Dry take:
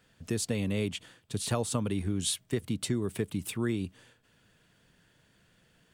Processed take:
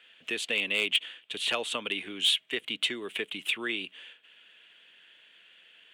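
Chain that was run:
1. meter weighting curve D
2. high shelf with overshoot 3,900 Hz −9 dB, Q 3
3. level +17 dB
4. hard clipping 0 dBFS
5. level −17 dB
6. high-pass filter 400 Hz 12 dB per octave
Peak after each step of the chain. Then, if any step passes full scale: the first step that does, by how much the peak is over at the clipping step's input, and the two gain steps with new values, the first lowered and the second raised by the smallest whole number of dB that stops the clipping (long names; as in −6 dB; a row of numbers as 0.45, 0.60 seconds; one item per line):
−8.0, −10.0, +7.0, 0.0, −17.0, −15.0 dBFS
step 3, 7.0 dB
step 3 +10 dB, step 5 −10 dB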